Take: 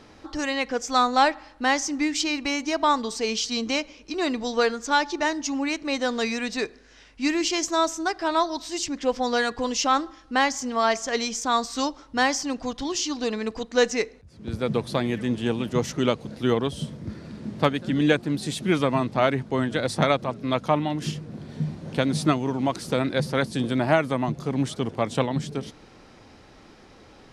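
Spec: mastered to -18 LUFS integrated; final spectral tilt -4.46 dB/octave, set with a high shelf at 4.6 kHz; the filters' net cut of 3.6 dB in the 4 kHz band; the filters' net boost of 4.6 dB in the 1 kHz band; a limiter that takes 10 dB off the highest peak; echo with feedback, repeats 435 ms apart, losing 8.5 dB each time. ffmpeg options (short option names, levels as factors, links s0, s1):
-af "equalizer=f=1000:t=o:g=6,equalizer=f=4000:t=o:g=-7,highshelf=f=4600:g=4,alimiter=limit=0.251:level=0:latency=1,aecho=1:1:435|870|1305|1740:0.376|0.143|0.0543|0.0206,volume=2.24"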